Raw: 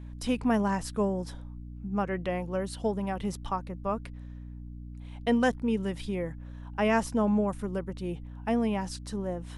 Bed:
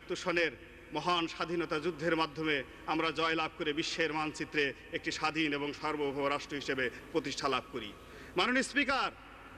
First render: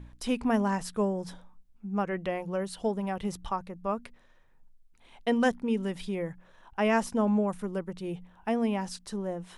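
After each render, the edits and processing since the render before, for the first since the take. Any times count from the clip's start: de-hum 60 Hz, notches 5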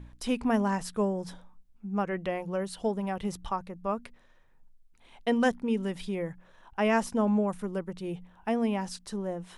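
nothing audible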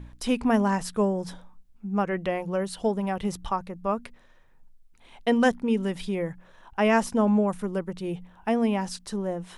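gain +4 dB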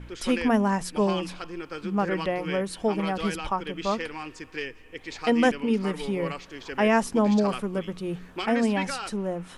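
add bed -2.5 dB

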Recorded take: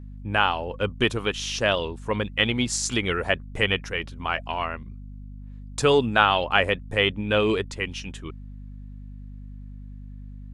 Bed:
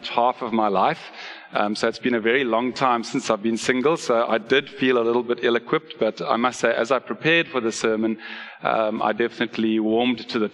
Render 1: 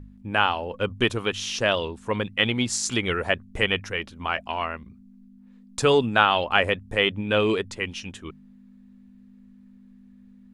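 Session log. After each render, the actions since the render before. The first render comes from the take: de-hum 50 Hz, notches 3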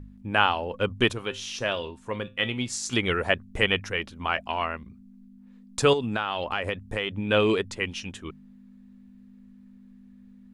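1.13–2.93 resonator 130 Hz, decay 0.24 s; 5.93–7.27 compressor 5:1, threshold -24 dBFS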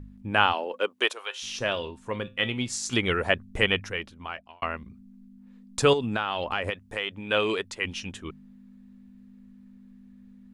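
0.52–1.42 HPF 220 Hz -> 720 Hz 24 dB/oct; 3.69–4.62 fade out; 6.7–7.85 low shelf 320 Hz -12 dB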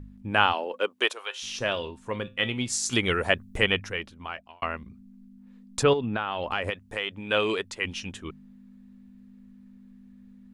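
2.67–3.58 high shelf 6700 Hz +7.5 dB; 5.83–6.44 air absorption 220 m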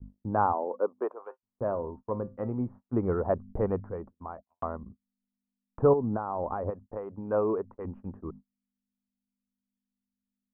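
steep low-pass 1100 Hz 36 dB/oct; gate -44 dBFS, range -38 dB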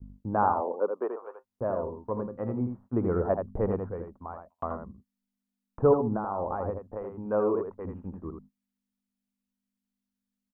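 echo 81 ms -6 dB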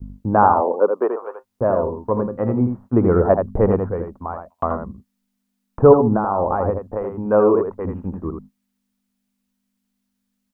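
gain +11.5 dB; limiter -1 dBFS, peak gain reduction 2 dB

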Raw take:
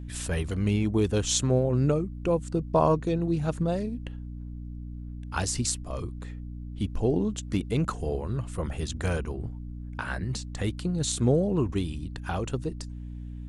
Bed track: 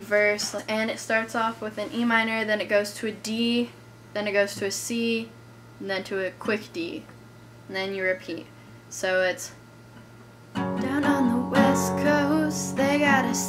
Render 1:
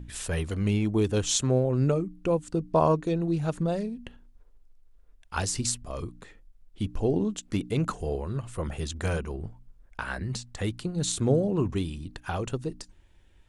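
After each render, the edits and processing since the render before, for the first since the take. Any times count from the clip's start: de-hum 60 Hz, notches 5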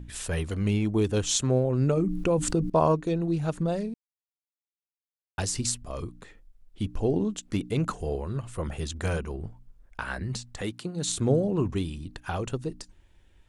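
1.97–2.7 fast leveller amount 70%; 3.94–5.38 mute; 10.61–11.09 Bessel high-pass 180 Hz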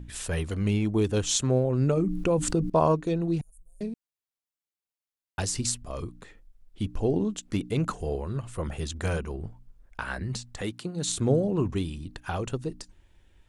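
3.41–3.81 inverse Chebyshev band-stop 100–4500 Hz, stop band 50 dB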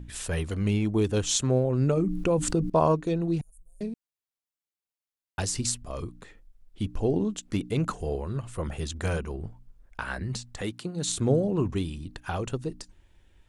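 nothing audible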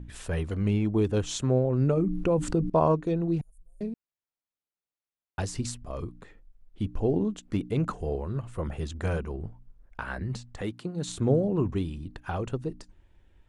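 high shelf 3000 Hz -11 dB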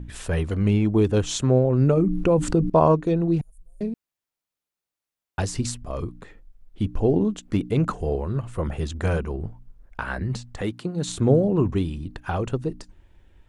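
gain +5.5 dB

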